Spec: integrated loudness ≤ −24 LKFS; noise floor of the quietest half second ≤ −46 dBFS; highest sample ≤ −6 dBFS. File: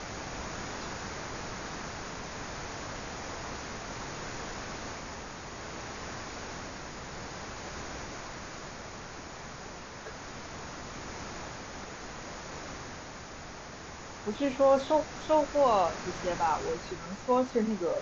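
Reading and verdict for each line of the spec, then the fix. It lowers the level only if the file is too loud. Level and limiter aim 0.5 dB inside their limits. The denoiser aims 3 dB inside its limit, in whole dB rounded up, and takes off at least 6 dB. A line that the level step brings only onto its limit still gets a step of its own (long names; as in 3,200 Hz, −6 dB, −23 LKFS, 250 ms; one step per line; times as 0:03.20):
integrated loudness −34.5 LKFS: in spec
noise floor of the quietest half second −44 dBFS: out of spec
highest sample −14.0 dBFS: in spec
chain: broadband denoise 6 dB, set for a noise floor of −44 dBFS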